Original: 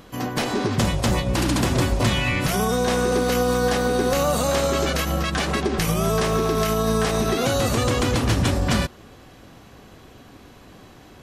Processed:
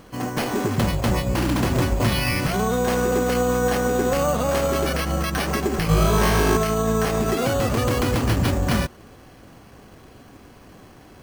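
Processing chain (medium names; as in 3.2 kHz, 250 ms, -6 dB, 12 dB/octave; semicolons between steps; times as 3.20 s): 5.88–6.57 s: flutter echo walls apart 3.3 m, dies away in 1.1 s; careless resampling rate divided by 6×, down filtered, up hold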